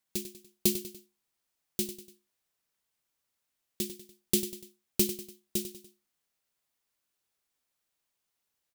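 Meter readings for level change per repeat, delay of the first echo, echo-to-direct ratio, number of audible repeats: -7.0 dB, 97 ms, -11.0 dB, 3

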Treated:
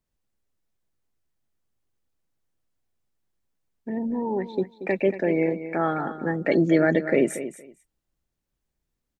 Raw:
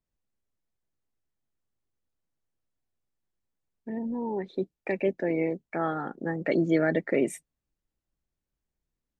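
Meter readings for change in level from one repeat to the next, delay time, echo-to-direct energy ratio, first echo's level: -15.5 dB, 0.232 s, -12.0 dB, -12.0 dB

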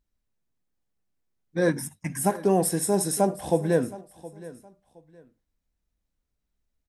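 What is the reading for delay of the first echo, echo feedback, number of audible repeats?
0.718 s, 27%, 2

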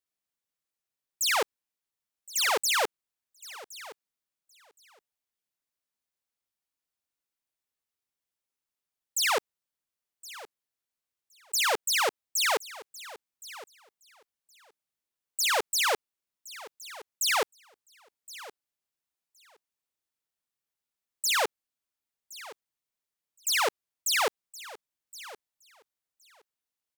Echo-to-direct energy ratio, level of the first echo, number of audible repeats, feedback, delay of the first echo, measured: -18.0 dB, -18.0 dB, 2, 15%, 1.068 s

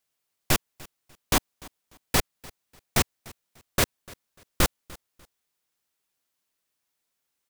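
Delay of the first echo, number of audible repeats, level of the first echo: 0.296 s, 2, -22.5 dB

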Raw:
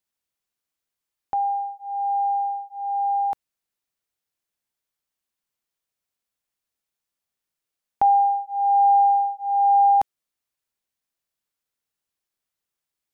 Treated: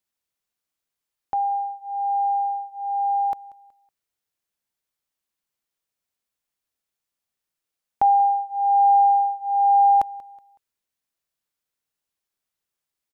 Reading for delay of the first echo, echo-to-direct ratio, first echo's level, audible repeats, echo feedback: 0.186 s, -21.0 dB, -21.5 dB, 2, 35%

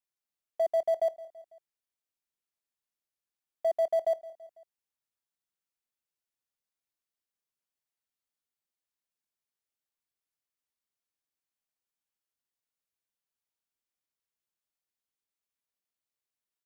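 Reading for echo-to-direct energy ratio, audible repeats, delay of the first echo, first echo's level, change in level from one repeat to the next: -17.0 dB, 3, 0.166 s, -18.5 dB, -5.0 dB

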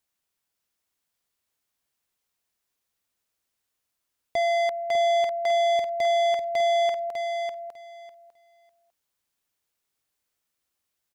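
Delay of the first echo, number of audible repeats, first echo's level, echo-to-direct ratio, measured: 0.6 s, 2, -6.0 dB, -6.0 dB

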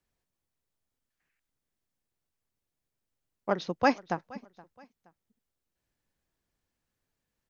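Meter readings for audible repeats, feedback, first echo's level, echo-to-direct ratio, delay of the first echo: 2, 35%, -22.0 dB, -21.5 dB, 0.472 s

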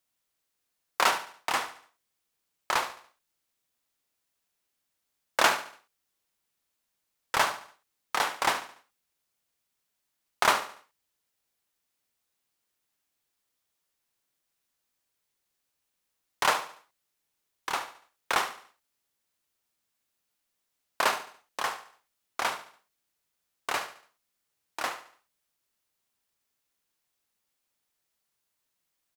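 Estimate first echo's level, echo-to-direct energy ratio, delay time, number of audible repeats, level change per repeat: -13.0 dB, -12.0 dB, 72 ms, 3, -8.0 dB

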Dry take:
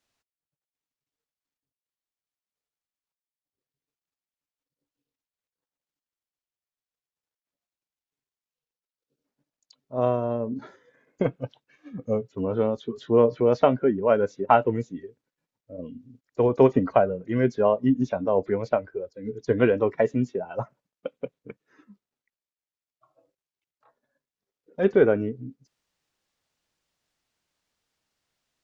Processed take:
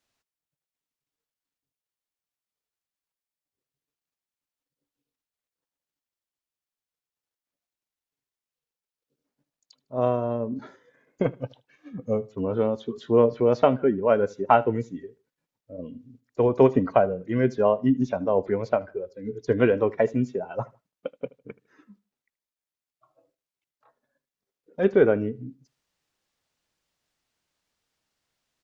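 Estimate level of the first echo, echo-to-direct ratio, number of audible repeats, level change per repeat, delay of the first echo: -22.5 dB, -22.0 dB, 2, -10.5 dB, 77 ms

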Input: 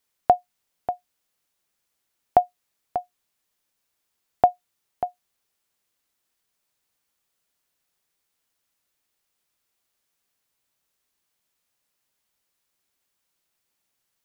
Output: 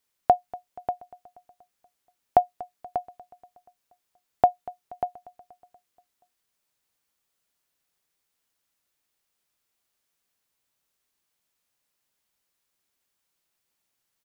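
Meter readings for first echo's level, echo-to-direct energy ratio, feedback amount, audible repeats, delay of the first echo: -20.0 dB, -18.5 dB, 57%, 4, 0.239 s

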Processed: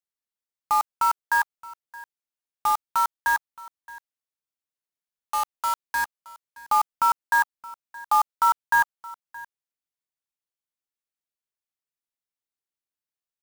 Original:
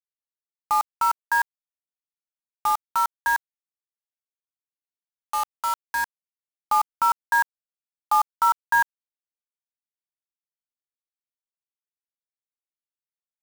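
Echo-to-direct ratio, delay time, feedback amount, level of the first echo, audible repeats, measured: -20.0 dB, 0.621 s, no steady repeat, -20.0 dB, 1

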